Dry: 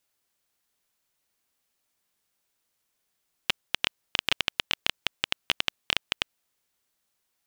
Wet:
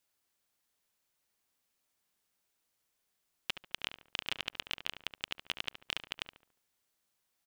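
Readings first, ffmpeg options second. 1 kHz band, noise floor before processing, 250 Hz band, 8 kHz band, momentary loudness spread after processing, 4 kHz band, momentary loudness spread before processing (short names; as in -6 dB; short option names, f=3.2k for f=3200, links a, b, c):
-10.0 dB, -78 dBFS, -10.0 dB, -10.5 dB, 4 LU, -10.5 dB, 4 LU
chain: -filter_complex "[0:a]alimiter=limit=-11dB:level=0:latency=1:release=32,asplit=2[a][b];[b]adelay=71,lowpass=f=2k:p=1,volume=-8.5dB,asplit=2[c][d];[d]adelay=71,lowpass=f=2k:p=1,volume=0.43,asplit=2[e][f];[f]adelay=71,lowpass=f=2k:p=1,volume=0.43,asplit=2[g][h];[h]adelay=71,lowpass=f=2k:p=1,volume=0.43,asplit=2[i][j];[j]adelay=71,lowpass=f=2k:p=1,volume=0.43[k];[c][e][g][i][k]amix=inputs=5:normalize=0[l];[a][l]amix=inputs=2:normalize=0,volume=-3.5dB"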